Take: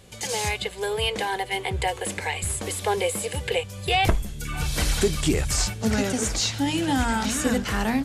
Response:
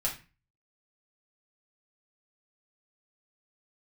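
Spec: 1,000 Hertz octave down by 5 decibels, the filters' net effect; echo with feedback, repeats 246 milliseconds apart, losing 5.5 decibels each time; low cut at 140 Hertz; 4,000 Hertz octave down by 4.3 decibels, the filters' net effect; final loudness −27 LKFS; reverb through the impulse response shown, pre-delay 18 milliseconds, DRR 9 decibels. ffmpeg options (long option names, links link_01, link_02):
-filter_complex "[0:a]highpass=140,equalizer=frequency=1000:width_type=o:gain=-7,equalizer=frequency=4000:width_type=o:gain=-5.5,aecho=1:1:246|492|738|984|1230|1476|1722:0.531|0.281|0.149|0.079|0.0419|0.0222|0.0118,asplit=2[link_01][link_02];[1:a]atrim=start_sample=2205,adelay=18[link_03];[link_02][link_03]afir=irnorm=-1:irlink=0,volume=-14dB[link_04];[link_01][link_04]amix=inputs=2:normalize=0,volume=-1dB"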